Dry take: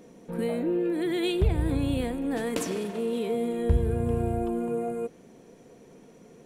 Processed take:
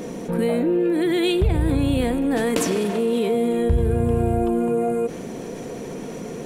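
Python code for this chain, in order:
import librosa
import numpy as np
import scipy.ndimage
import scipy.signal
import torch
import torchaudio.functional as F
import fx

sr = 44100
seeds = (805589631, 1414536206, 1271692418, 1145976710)

y = fx.env_flatten(x, sr, amount_pct=50)
y = y * 10.0 ** (2.5 / 20.0)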